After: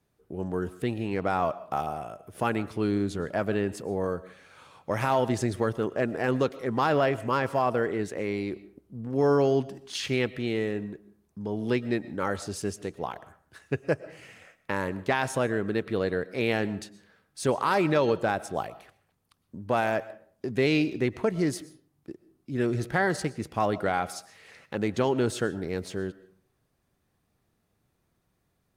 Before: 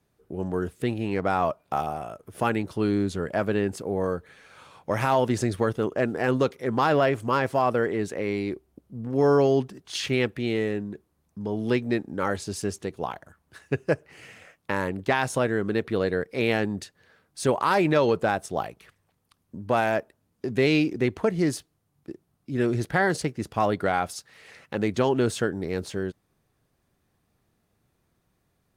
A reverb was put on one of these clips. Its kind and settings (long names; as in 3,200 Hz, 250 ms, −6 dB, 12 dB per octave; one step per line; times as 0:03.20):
comb and all-pass reverb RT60 0.52 s, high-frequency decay 0.65×, pre-delay 80 ms, DRR 17 dB
level −2.5 dB